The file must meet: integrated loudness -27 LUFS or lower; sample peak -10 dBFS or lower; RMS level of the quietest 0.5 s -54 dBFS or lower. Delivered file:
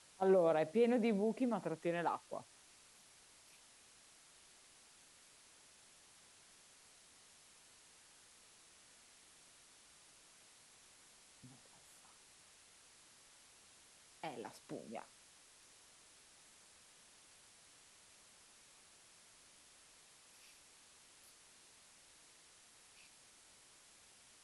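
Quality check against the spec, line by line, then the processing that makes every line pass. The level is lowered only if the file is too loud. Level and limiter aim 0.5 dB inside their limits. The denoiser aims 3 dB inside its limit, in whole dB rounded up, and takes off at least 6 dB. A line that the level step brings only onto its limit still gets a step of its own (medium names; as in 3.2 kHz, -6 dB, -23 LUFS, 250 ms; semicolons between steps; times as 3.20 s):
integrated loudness -37.5 LUFS: pass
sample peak -22.0 dBFS: pass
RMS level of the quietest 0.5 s -65 dBFS: pass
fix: none needed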